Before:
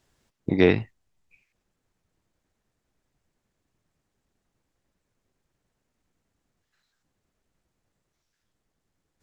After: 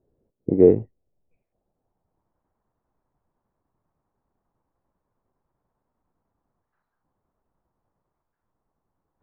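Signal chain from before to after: low-pass sweep 470 Hz -> 1000 Hz, 0.85–2.37; gain -1 dB

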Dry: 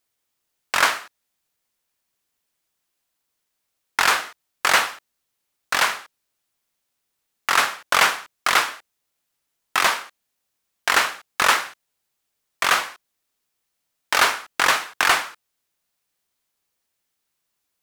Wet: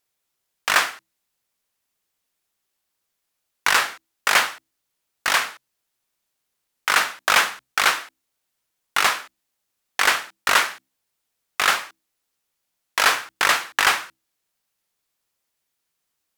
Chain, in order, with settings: notches 60/120/180/240/300 Hz; speed mistake 44.1 kHz file played as 48 kHz

